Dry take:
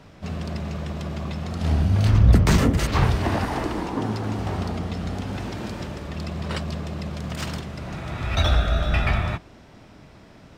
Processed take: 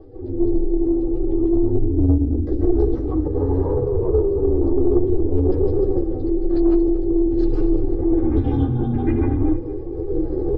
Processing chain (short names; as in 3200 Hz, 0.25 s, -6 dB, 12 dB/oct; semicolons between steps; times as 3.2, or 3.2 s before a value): spectral contrast raised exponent 2; bell 320 Hz +12.5 dB 0.6 oct; compressor, threshold -19 dBFS, peak gain reduction 9.5 dB; reverb RT60 0.20 s, pre-delay 0.143 s, DRR -3.5 dB; AGC gain up to 10 dB; formant shift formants -2 st; ring modulator 180 Hz; flange 0.52 Hz, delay 9.6 ms, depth 5.4 ms, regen -11%; soft clip -8.5 dBFS, distortion -21 dB; comb 2.5 ms, depth 39%; feedback echo 0.232 s, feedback 38%, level -14.5 dB